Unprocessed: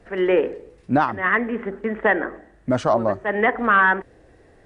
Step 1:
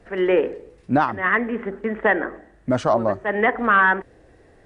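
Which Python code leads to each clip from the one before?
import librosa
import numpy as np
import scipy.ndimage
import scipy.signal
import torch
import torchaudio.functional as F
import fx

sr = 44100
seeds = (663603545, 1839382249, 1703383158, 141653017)

y = x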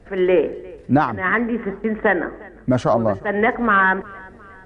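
y = fx.low_shelf(x, sr, hz=280.0, db=7.0)
y = fx.echo_feedback(y, sr, ms=356, feedback_pct=50, wet_db=-23)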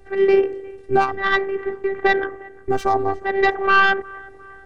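y = fx.tracing_dist(x, sr, depth_ms=0.074)
y = fx.robotise(y, sr, hz=390.0)
y = y * 10.0 ** (2.0 / 20.0)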